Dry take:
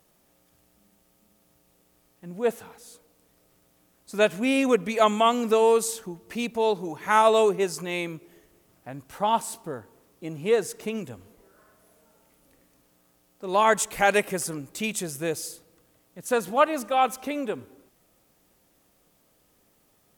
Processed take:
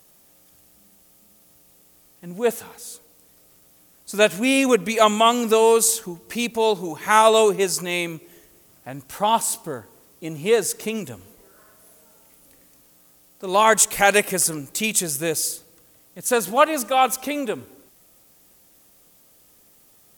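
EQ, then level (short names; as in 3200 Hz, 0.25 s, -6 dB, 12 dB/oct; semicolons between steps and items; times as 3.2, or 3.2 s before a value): high shelf 3700 Hz +9.5 dB; +3.5 dB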